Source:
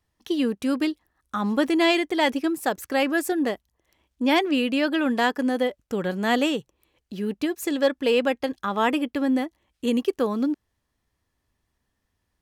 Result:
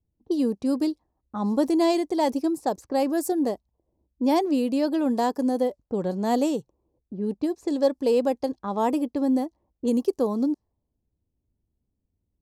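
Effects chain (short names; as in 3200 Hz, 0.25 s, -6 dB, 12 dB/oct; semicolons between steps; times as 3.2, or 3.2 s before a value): low-pass opened by the level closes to 360 Hz, open at -21 dBFS; band shelf 2100 Hz -15 dB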